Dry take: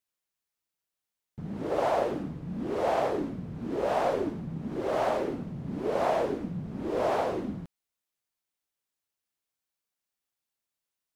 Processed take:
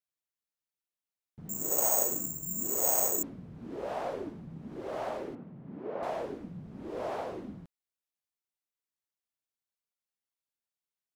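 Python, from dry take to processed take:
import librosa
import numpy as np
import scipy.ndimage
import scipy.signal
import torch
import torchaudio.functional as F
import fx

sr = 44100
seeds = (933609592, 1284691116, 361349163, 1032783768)

y = fx.resample_bad(x, sr, factor=6, down='filtered', up='zero_stuff', at=(1.49, 3.23))
y = fx.bandpass_edges(y, sr, low_hz=140.0, high_hz=2100.0, at=(5.35, 6.03))
y = F.gain(torch.from_numpy(y), -8.5).numpy()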